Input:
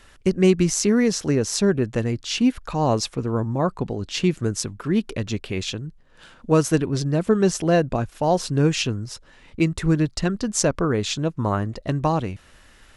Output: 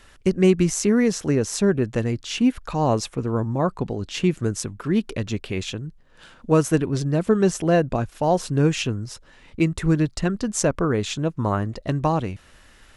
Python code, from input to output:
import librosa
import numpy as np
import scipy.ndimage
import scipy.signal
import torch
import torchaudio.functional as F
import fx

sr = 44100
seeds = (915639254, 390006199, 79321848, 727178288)

y = fx.dynamic_eq(x, sr, hz=4700.0, q=1.5, threshold_db=-40.0, ratio=4.0, max_db=-6)